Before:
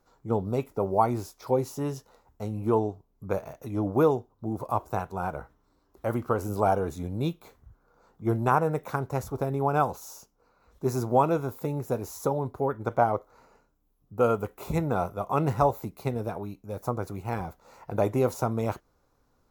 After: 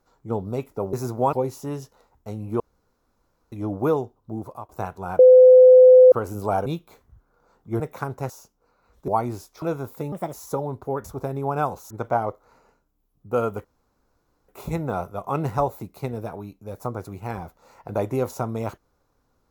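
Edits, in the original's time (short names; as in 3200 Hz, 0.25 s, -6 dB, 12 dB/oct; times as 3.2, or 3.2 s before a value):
0.93–1.47 swap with 10.86–11.26
2.74–3.66 room tone
4.52–4.83 fade out, to -23.5 dB
5.33–6.26 bleep 509 Hz -6.5 dBFS
6.8–7.2 cut
8.34–8.72 cut
9.22–10.08 move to 12.77
11.76–12.06 speed 140%
14.51 insert room tone 0.84 s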